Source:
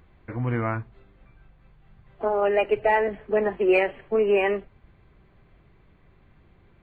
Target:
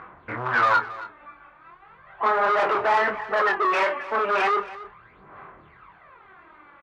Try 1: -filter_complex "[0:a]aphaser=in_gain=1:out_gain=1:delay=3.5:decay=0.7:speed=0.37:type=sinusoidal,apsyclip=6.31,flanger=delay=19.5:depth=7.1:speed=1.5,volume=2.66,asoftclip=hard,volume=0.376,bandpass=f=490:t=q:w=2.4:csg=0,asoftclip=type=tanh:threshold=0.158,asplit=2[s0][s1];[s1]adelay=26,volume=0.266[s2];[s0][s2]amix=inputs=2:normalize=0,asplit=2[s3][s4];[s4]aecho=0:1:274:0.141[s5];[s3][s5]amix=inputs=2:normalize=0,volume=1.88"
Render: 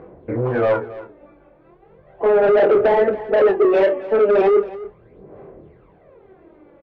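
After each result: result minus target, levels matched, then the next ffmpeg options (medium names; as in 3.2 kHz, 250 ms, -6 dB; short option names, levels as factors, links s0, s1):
1 kHz band -9.5 dB; overload inside the chain: distortion -5 dB
-filter_complex "[0:a]aphaser=in_gain=1:out_gain=1:delay=3.5:decay=0.7:speed=0.37:type=sinusoidal,apsyclip=6.31,flanger=delay=19.5:depth=7.1:speed=1.5,volume=2.66,asoftclip=hard,volume=0.376,bandpass=f=1200:t=q:w=2.4:csg=0,asoftclip=type=tanh:threshold=0.158,asplit=2[s0][s1];[s1]adelay=26,volume=0.266[s2];[s0][s2]amix=inputs=2:normalize=0,asplit=2[s3][s4];[s4]aecho=0:1:274:0.141[s5];[s3][s5]amix=inputs=2:normalize=0,volume=1.88"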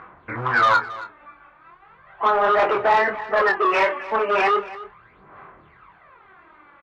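overload inside the chain: distortion -5 dB
-filter_complex "[0:a]aphaser=in_gain=1:out_gain=1:delay=3.5:decay=0.7:speed=0.37:type=sinusoidal,apsyclip=6.31,flanger=delay=19.5:depth=7.1:speed=1.5,volume=5.62,asoftclip=hard,volume=0.178,bandpass=f=1200:t=q:w=2.4:csg=0,asoftclip=type=tanh:threshold=0.158,asplit=2[s0][s1];[s1]adelay=26,volume=0.266[s2];[s0][s2]amix=inputs=2:normalize=0,asplit=2[s3][s4];[s4]aecho=0:1:274:0.141[s5];[s3][s5]amix=inputs=2:normalize=0,volume=1.88"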